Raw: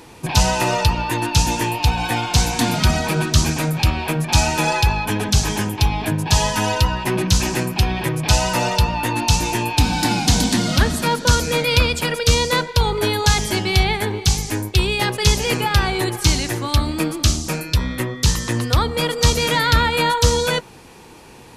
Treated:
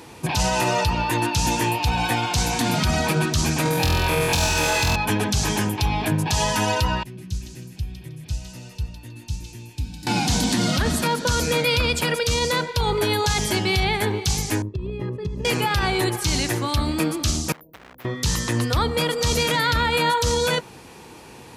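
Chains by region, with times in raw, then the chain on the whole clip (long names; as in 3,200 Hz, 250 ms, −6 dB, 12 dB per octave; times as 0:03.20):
0:03.63–0:04.96: gain into a clipping stage and back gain 12.5 dB + flutter between parallel walls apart 4 metres, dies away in 1.1 s
0:07.03–0:10.07: guitar amp tone stack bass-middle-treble 10-0-1 + feedback echo with a high-pass in the loop 158 ms, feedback 25%, high-pass 760 Hz, level −5 dB
0:14.62–0:15.45: moving average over 59 samples + downward compressor 12 to 1, threshold −22 dBFS
0:17.52–0:18.05: inverse Chebyshev band-stop filter 1,300–8,100 Hz, stop band 70 dB + hard clipping −24.5 dBFS + every bin compressed towards the loudest bin 10 to 1
whole clip: high-pass filter 55 Hz; brickwall limiter −11.5 dBFS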